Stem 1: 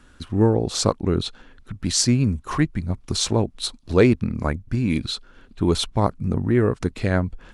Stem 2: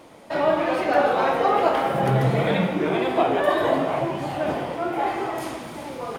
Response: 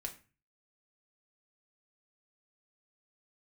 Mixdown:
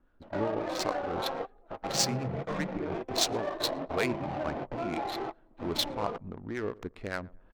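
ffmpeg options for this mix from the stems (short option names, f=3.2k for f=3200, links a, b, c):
-filter_complex "[0:a]equalizer=f=110:t=o:w=2.9:g=-11.5,acrossover=split=830[a][b];[a]aeval=exprs='val(0)*(1-0.5/2+0.5/2*cos(2*PI*5.1*n/s))':c=same[c];[b]aeval=exprs='val(0)*(1-0.5/2-0.5/2*cos(2*PI*5.1*n/s))':c=same[d];[c][d]amix=inputs=2:normalize=0,highshelf=f=2.7k:g=9.5,volume=-8dB,asplit=3[e][f][g];[f]volume=-20.5dB[h];[1:a]acompressor=threshold=-27dB:ratio=8,volume=-3.5dB[i];[g]apad=whole_len=272582[j];[i][j]sidechaingate=range=-27dB:threshold=-49dB:ratio=16:detection=peak[k];[h]aecho=0:1:113|226|339|452|565:1|0.33|0.109|0.0359|0.0119[l];[e][k][l]amix=inputs=3:normalize=0,lowpass=8.1k,adynamicsmooth=sensitivity=4.5:basefreq=830"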